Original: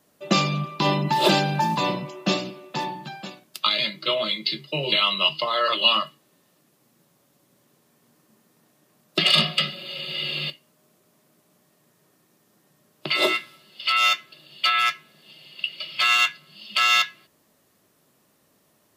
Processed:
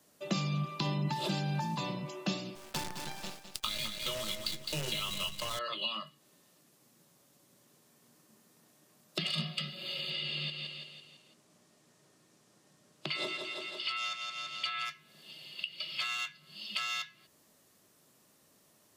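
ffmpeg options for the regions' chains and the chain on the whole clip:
ffmpeg -i in.wav -filter_complex "[0:a]asettb=1/sr,asplit=3[link_01][link_02][link_03];[link_01]atrim=end=2.554[link_04];[link_02]atrim=start=2.55:end=5.59,asetpts=PTS-STARTPTS,afade=type=in:duration=0.004:curve=qsin,afade=type=out:start_time=3.036:duration=0.004:curve=qsin,acrusher=bits=5:dc=4:mix=0:aa=0.000001,aecho=1:1:209|418|627:0.316|0.0822|0.0214,atrim=end_sample=134064[link_05];[link_03]atrim=start=5.586[link_06];[link_04][link_05]acrossfade=duration=0.004:curve1=hsin:curve2=qsin[link_07];[link_07][link_06]acrossfade=duration=0.004:curve1=qsin:curve2=hsin,asettb=1/sr,asplit=3[link_08][link_09][link_10];[link_08]atrim=end=10.104[link_11];[link_09]atrim=start=10.1:end=14.85,asetpts=PTS-STARTPTS,afade=type=in:duration=0.004:curve=qsin,afade=type=out:start_time=4.746:duration=0.004:curve=qsin,lowpass=8600,aecho=1:1:167|334|501|668|835:0.355|0.17|0.0817|0.0392|0.0188,atrim=end_sample=209475[link_12];[link_10]atrim=start=14.846[link_13];[link_11][link_12]acrossfade=duration=0.004:curve1=hsin:curve2=qsin[link_14];[link_14][link_13]acrossfade=duration=0.004:curve1=qsin:curve2=hsin,acrossover=split=170[link_15][link_16];[link_16]acompressor=threshold=-33dB:ratio=5[link_17];[link_15][link_17]amix=inputs=2:normalize=0,equalizer=frequency=7000:width_type=o:width=1.8:gain=5.5,volume=-4dB" out.wav

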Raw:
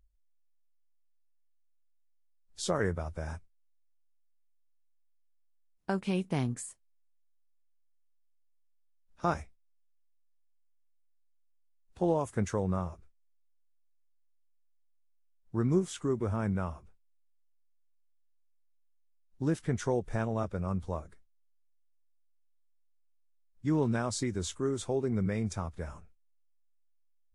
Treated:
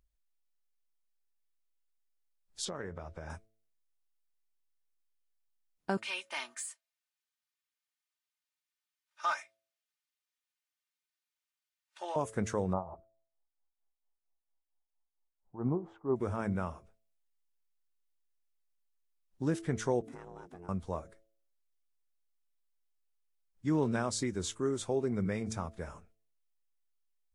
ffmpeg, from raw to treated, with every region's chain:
ffmpeg -i in.wav -filter_complex "[0:a]asettb=1/sr,asplit=3[link_01][link_02][link_03];[link_01]atrim=end=2.654[link_04];[link_02]atrim=start=2.65:end=3.3,asetpts=PTS-STARTPTS,afade=type=in:duration=0.004:curve=qsin,afade=type=out:start_time=0.646:duration=0.004:curve=qsin,lowpass=4900,acompressor=threshold=-35dB:ratio=6:attack=3.2:release=140:knee=1:detection=peak[link_05];[link_03]atrim=start=3.296[link_06];[link_04][link_05]acrossfade=duration=0.004:curve1=hsin:curve2=qsin[link_07];[link_07][link_06]acrossfade=duration=0.004:curve1=qsin:curve2=hsin,asettb=1/sr,asplit=3[link_08][link_09][link_10];[link_08]atrim=end=5.974[link_11];[link_09]atrim=start=5.97:end=12.16,asetpts=PTS-STARTPTS,afade=type=in:duration=0.004:curve=qsin,afade=type=out:start_time=6.186:duration=0.004:curve=qsin,highpass=1300,aecho=1:1:3.3:0.73,atrim=end_sample=272979,asplit=2[link_12][link_13];[link_13]highpass=frequency=720:poles=1,volume=12dB,asoftclip=type=tanh:threshold=-22dB[link_14];[link_12][link_14]amix=inputs=2:normalize=0,lowpass=frequency=3700:poles=1,volume=-6dB[link_15];[link_10]atrim=start=12.156[link_16];[link_11][link_15]acrossfade=duration=0.004:curve1=hsin:curve2=qsin[link_17];[link_17][link_16]acrossfade=duration=0.004:curve1=qsin:curve2=hsin,asettb=1/sr,asplit=3[link_18][link_19][link_20];[link_18]atrim=end=12.734[link_21];[link_19]atrim=start=12.73:end=16.16,asetpts=PTS-STARTPTS,afade=type=in:duration=0.004:curve=qsin,afade=type=out:start_time=3.426:duration=0.004:curve=qsin,tremolo=f=4.4:d=0.8,lowpass=frequency=840:width_type=q:width=3.8[link_22];[link_20]atrim=start=16.156[link_23];[link_21][link_22]acrossfade=duration=0.004:curve1=hsin:curve2=qsin[link_24];[link_24][link_23]acrossfade=duration=0.004:curve1=qsin:curve2=hsin,asettb=1/sr,asplit=3[link_25][link_26][link_27];[link_25]atrim=end=20.014[link_28];[link_26]atrim=start=20.01:end=20.69,asetpts=PTS-STARTPTS,afade=type=in:duration=0.004:curve=qsin,afade=type=out:start_time=0.676:duration=0.004:curve=qsin,highshelf=frequency=6300:gain=4.5,aeval=exprs='val(0)*sin(2*PI*260*n/s)':channel_layout=same,acompressor=threshold=-45dB:ratio=4:attack=3.2:release=140:knee=1:detection=peak[link_29];[link_27]atrim=start=20.686[link_30];[link_28][link_29]acrossfade=duration=0.004:curve1=hsin:curve2=qsin[link_31];[link_31][link_30]acrossfade=duration=0.004:curve1=qsin:curve2=hsin,lowshelf=frequency=100:gain=-9,bandreject=frequency=110.5:width_type=h:width=4,bandreject=frequency=221:width_type=h:width=4,bandreject=frequency=331.5:width_type=h:width=4,bandreject=frequency=442:width_type=h:width=4,bandreject=frequency=552.5:width_type=h:width=4,bandreject=frequency=663:width_type=h:width=4" out.wav

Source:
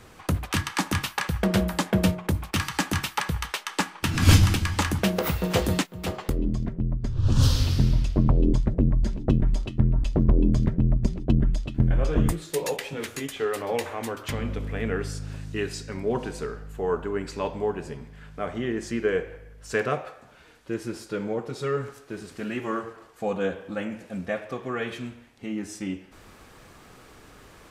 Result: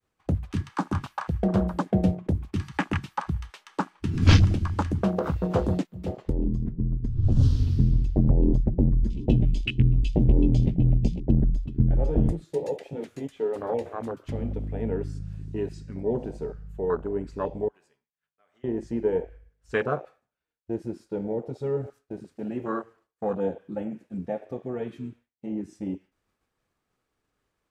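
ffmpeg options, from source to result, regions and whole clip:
ffmpeg -i in.wav -filter_complex "[0:a]asettb=1/sr,asplit=3[link_01][link_02][link_03];[link_01]atrim=end=9.104[link_04];[link_02]atrim=start=9.1:end=11.2,asetpts=PTS-STARTPTS,afade=type=in:duration=0.004:curve=qsin,afade=type=out:start_time=2.096:duration=0.004:curve=qsin,highshelf=frequency=2000:width_type=q:width=3:gain=11,asplit=2[link_05][link_06];[link_06]adelay=17,volume=-5.5dB[link_07];[link_05][link_07]amix=inputs=2:normalize=0,atrim=end_sample=92610[link_08];[link_03]atrim=start=11.196[link_09];[link_04][link_08]acrossfade=duration=0.004:curve1=hsin:curve2=qsin[link_10];[link_10][link_09]acrossfade=duration=0.004:curve1=qsin:curve2=hsin,asettb=1/sr,asplit=3[link_11][link_12][link_13];[link_11]atrim=end=17.684[link_14];[link_12]atrim=start=17.68:end=18.64,asetpts=PTS-STARTPTS,afade=type=in:duration=0.004:curve=qsin,afade=type=out:start_time=0.956:duration=0.004:curve=qsin,highpass=frequency=1100:poles=1,acompressor=threshold=-40dB:ratio=12:attack=3.2:release=140:knee=1:detection=peak[link_15];[link_13]atrim=start=18.636[link_16];[link_14][link_15]acrossfade=duration=0.004:curve1=hsin:curve2=qsin[link_17];[link_17][link_16]acrossfade=duration=0.004:curve1=qsin:curve2=hsin,agate=range=-33dB:threshold=-40dB:ratio=3:detection=peak,acrossover=split=9000[link_18][link_19];[link_19]acompressor=threshold=-54dB:ratio=4:attack=1:release=60[link_20];[link_18][link_20]amix=inputs=2:normalize=0,afwtdn=0.0447" out.wav

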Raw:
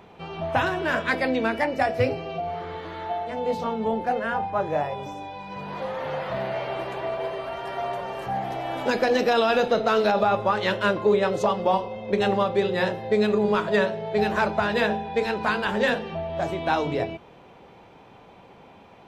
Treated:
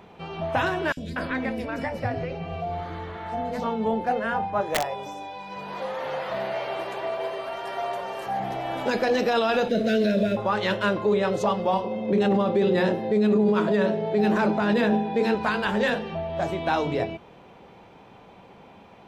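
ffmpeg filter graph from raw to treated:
ffmpeg -i in.wav -filter_complex "[0:a]asettb=1/sr,asplit=3[link_01][link_02][link_03];[link_01]atrim=end=0.924[link_04];[link_02]atrim=start=0.92:end=3.61,asetpts=PTS-STARTPTS,afade=type=in:duration=0.004:curve=qsin,afade=type=out:start_time=2.686:duration=0.004:curve=qsin,lowshelf=frequency=150:gain=10,acompressor=threshold=-24dB:ratio=4:attack=3.2:release=140:knee=1:detection=peak,acrossover=split=450|3500[link_05][link_06][link_07];[link_05]adelay=50[link_08];[link_06]adelay=240[link_09];[link_08][link_09][link_07]amix=inputs=3:normalize=0,atrim=end_sample=118629[link_10];[link_03]atrim=start=3.606[link_11];[link_04][link_10]acrossfade=duration=0.004:curve1=hsin:curve2=qsin[link_12];[link_12][link_11]acrossfade=duration=0.004:curve1=qsin:curve2=hsin,asettb=1/sr,asplit=3[link_13][link_14][link_15];[link_13]atrim=end=4.614[link_16];[link_14]atrim=start=4.61:end=8.4,asetpts=PTS-STARTPTS,afade=type=in:duration=0.004:curve=qsin,afade=type=out:start_time=3.786:duration=0.004:curve=qsin,bass=frequency=250:gain=-9,treble=frequency=4000:gain=4,bandreject=frequency=60:width_type=h:width=6,bandreject=frequency=120:width_type=h:width=6,bandreject=frequency=180:width_type=h:width=6,bandreject=frequency=240:width_type=h:width=6,aeval=exprs='(mod(7.08*val(0)+1,2)-1)/7.08':channel_layout=same[link_17];[link_15]atrim=start=8.396[link_18];[link_16][link_17]acrossfade=duration=0.004:curve1=hsin:curve2=qsin[link_19];[link_19][link_18]acrossfade=duration=0.004:curve1=qsin:curve2=hsin,asettb=1/sr,asplit=3[link_20][link_21][link_22];[link_20]atrim=end=9.694[link_23];[link_21]atrim=start=9.69:end=10.37,asetpts=PTS-STARTPTS,afade=type=in:duration=0.004:curve=qsin,afade=type=out:start_time=0.676:duration=0.004:curve=qsin,asuperstop=centerf=1000:order=20:qfactor=1.3,equalizer=frequency=230:width=2:gain=8.5,aeval=exprs='sgn(val(0))*max(abs(val(0))-0.00562,0)':channel_layout=same[link_24];[link_22]atrim=start=10.366[link_25];[link_23][link_24]acrossfade=duration=0.004:curve1=hsin:curve2=qsin[link_26];[link_26][link_25]acrossfade=duration=0.004:curve1=qsin:curve2=hsin,asettb=1/sr,asplit=3[link_27][link_28][link_29];[link_27]atrim=end=11.844[link_30];[link_28]atrim=start=11.84:end=15.35,asetpts=PTS-STARTPTS,afade=type=in:duration=0.004:curve=qsin,afade=type=out:start_time=3.506:duration=0.004:curve=qsin,highpass=140,equalizer=frequency=270:width_type=o:width=1.4:gain=11[link_31];[link_29]atrim=start=15.346[link_32];[link_30][link_31]acrossfade=duration=0.004:curve1=hsin:curve2=qsin[link_33];[link_33][link_32]acrossfade=duration=0.004:curve1=qsin:curve2=hsin,equalizer=frequency=200:width_type=o:width=0.27:gain=3.5,alimiter=limit=-14dB:level=0:latency=1:release=14" out.wav

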